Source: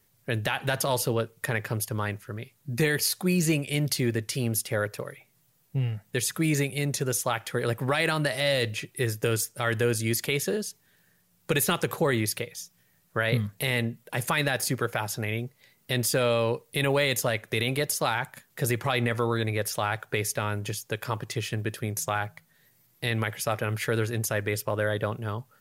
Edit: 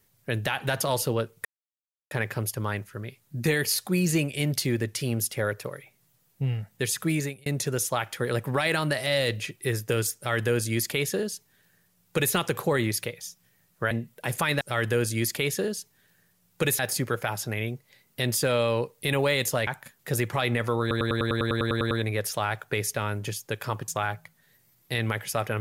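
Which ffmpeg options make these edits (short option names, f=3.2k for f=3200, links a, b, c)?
-filter_complex "[0:a]asplit=19[a][b][c][d][e][f][g][h][i][j][k][l][m][n][o][p][q][r][s];[a]atrim=end=1.45,asetpts=PTS-STARTPTS,afade=t=out:st=1.446:d=0.004:c=hsin,apad=pad_dur=0.66[t];[b]atrim=start=1.45:end=6.8,asetpts=PTS-STARTPTS,afade=t=in:d=0.004:c=hsin,afade=t=out:st=4.98:d=0.37[u];[c]atrim=start=6.8:end=13.252,asetpts=PTS-STARTPTS,afade=t=in:d=0.004:c=hsin[v];[d]atrim=start=13.798:end=14.502[w];[e]atrim=start=9.498:end=11.682[x];[f]atrim=start=14.498:end=17.382[y];[g]atrim=start=18.178:end=19.422[z];[h]atrim=start=19.318:end=19.422[aa];[i]atrim=start=19.318:end=19.422[ab];[j]atrim=start=19.318:end=19.422[ac];[k]atrim=start=19.318:end=19.422[ad];[l]atrim=start=19.318:end=19.422[ae];[m]atrim=start=19.318:end=19.422[af];[n]atrim=start=19.318:end=19.422[ag];[o]atrim=start=19.318:end=19.422[ah];[p]atrim=start=19.318:end=19.422[ai];[q]atrim=start=19.318:end=19.422[aj];[r]atrim=start=19.318:end=21.292[ak];[s]atrim=start=21.998[al];[t][u][v]concat=n=3:v=0:a=1[am];[am][w]acrossfade=d=0.004:c1=hsin:c2=hsin[an];[an][x]acrossfade=d=0.004:c1=hsin:c2=hsin[ao];[ao][y]acrossfade=d=0.004:c1=hsin:c2=hsin[ap];[ap][z]acrossfade=d=0.004:c1=hsin:c2=hsin[aq];[aq][aa]acrossfade=d=0.004:c1=hsin:c2=hsin[ar];[ar][ab]acrossfade=d=0.004:c1=hsin:c2=hsin[as];[as][ac]acrossfade=d=0.004:c1=hsin:c2=hsin[at];[at][ad]acrossfade=d=0.004:c1=hsin:c2=hsin[au];[au][ae]acrossfade=d=0.004:c1=hsin:c2=hsin[av];[av][af]acrossfade=d=0.004:c1=hsin:c2=hsin[aw];[aw][ag]acrossfade=d=0.004:c1=hsin:c2=hsin[ax];[ax][ah]acrossfade=d=0.004:c1=hsin:c2=hsin[ay];[ay][ai]acrossfade=d=0.004:c1=hsin:c2=hsin[az];[az][aj]acrossfade=d=0.004:c1=hsin:c2=hsin[ba];[ba][ak]acrossfade=d=0.004:c1=hsin:c2=hsin[bb];[bb][al]acrossfade=d=0.004:c1=hsin:c2=hsin"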